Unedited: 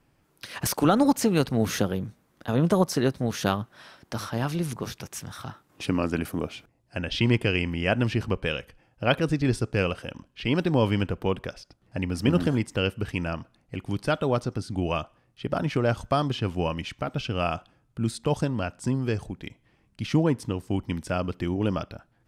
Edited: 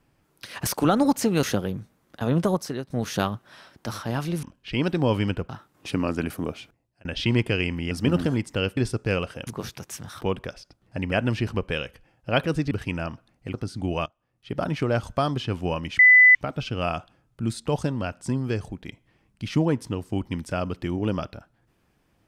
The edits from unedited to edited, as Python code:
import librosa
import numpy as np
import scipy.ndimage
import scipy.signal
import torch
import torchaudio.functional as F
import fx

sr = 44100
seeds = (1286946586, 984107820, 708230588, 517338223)

y = fx.edit(x, sr, fx.cut(start_s=1.43, length_s=0.27),
    fx.fade_out_to(start_s=2.65, length_s=0.52, floor_db=-14.0),
    fx.swap(start_s=4.7, length_s=0.74, other_s=10.15, other_length_s=1.06),
    fx.fade_out_span(start_s=6.37, length_s=0.63, curve='qsin'),
    fx.swap(start_s=7.86, length_s=1.59, other_s=12.12, other_length_s=0.86),
    fx.cut(start_s=13.81, length_s=0.67),
    fx.fade_in_from(start_s=15.0, length_s=0.48, curve='qua', floor_db=-20.5),
    fx.insert_tone(at_s=16.93, length_s=0.36, hz=2000.0, db=-9.5), tone=tone)